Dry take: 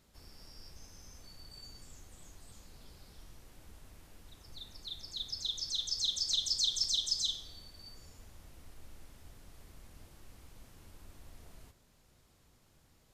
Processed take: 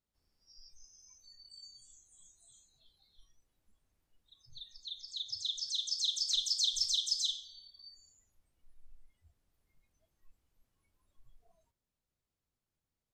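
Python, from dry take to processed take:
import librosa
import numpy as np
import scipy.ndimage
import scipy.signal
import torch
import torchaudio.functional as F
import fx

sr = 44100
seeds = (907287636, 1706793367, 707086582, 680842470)

y = fx.noise_reduce_blind(x, sr, reduce_db=24)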